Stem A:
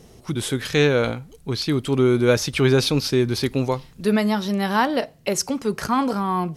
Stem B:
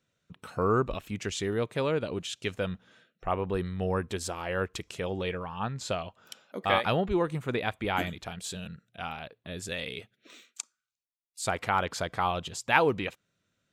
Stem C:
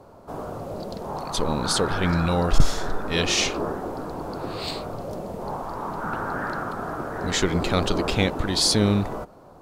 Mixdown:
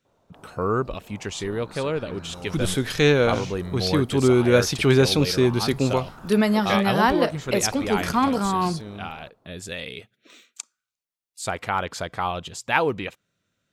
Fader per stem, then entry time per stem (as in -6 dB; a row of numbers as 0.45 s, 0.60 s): 0.0 dB, +2.0 dB, -18.0 dB; 2.25 s, 0.00 s, 0.05 s